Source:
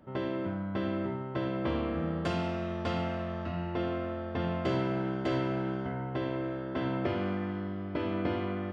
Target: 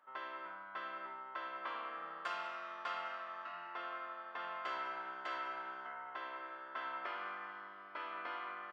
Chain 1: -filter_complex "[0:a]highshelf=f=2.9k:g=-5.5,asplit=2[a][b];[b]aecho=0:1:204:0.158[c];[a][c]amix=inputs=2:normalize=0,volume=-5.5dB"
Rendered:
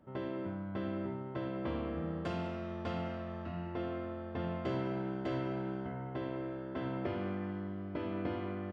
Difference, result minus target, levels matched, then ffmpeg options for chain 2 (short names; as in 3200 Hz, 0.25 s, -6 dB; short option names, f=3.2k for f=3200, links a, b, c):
1000 Hz band -8.5 dB
-filter_complex "[0:a]highpass=f=1.2k:t=q:w=2.4,highshelf=f=2.9k:g=-5.5,asplit=2[a][b];[b]aecho=0:1:204:0.158[c];[a][c]amix=inputs=2:normalize=0,volume=-5.5dB"